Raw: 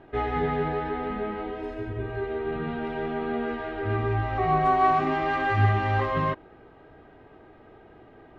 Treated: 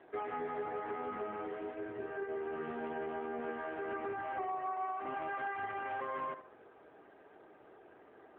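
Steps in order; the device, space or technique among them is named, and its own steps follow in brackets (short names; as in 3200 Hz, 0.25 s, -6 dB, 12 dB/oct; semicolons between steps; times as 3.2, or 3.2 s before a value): 0.46–1.04 low shelf 110 Hz +3 dB; tape echo 70 ms, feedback 28%, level -13 dB, low-pass 2600 Hz; voicemail (BPF 340–3100 Hz; compressor 10:1, threshold -30 dBFS, peak gain reduction 13.5 dB; gain -4.5 dB; AMR-NB 7.95 kbps 8000 Hz)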